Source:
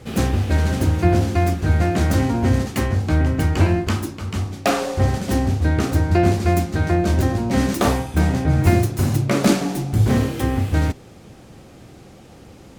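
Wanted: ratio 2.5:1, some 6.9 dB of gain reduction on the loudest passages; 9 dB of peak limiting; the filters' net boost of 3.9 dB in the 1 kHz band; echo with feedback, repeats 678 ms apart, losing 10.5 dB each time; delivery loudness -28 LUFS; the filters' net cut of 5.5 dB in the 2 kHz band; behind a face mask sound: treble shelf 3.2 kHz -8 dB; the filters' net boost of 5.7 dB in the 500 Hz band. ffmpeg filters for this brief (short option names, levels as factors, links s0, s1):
-af "equalizer=f=500:t=o:g=7.5,equalizer=f=1000:t=o:g=3.5,equalizer=f=2000:t=o:g=-6.5,acompressor=threshold=0.112:ratio=2.5,alimiter=limit=0.188:level=0:latency=1,highshelf=f=3200:g=-8,aecho=1:1:678|1356|2034:0.299|0.0896|0.0269,volume=0.631"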